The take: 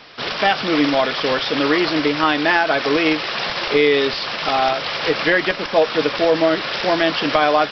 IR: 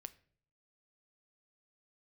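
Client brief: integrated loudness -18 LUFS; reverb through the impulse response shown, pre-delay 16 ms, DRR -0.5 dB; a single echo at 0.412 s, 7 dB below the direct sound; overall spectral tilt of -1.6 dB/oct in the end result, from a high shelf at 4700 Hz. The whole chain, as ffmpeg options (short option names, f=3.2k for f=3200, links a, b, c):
-filter_complex "[0:a]highshelf=f=4.7k:g=-4.5,aecho=1:1:412:0.447,asplit=2[a][b];[1:a]atrim=start_sample=2205,adelay=16[c];[b][c]afir=irnorm=-1:irlink=0,volume=6dB[d];[a][d]amix=inputs=2:normalize=0,volume=-3.5dB"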